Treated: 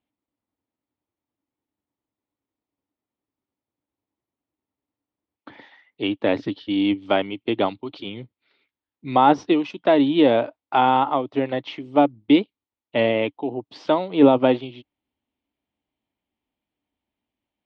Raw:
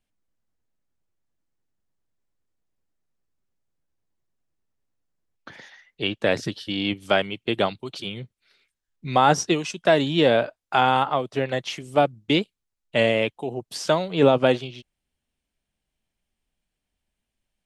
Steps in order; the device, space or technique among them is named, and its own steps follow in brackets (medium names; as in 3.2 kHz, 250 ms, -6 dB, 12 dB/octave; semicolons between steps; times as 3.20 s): guitar cabinet (cabinet simulation 95–3500 Hz, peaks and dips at 160 Hz -9 dB, 290 Hz +10 dB, 900 Hz +5 dB, 1.6 kHz -7 dB, 2.7 kHz -3 dB)